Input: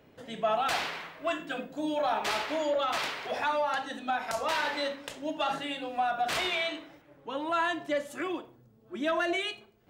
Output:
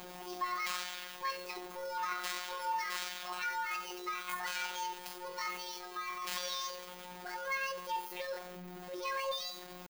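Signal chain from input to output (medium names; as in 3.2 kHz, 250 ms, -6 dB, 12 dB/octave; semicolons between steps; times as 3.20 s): jump at every zero crossing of -33 dBFS; pitch shift +8 st; robot voice 180 Hz; trim -7.5 dB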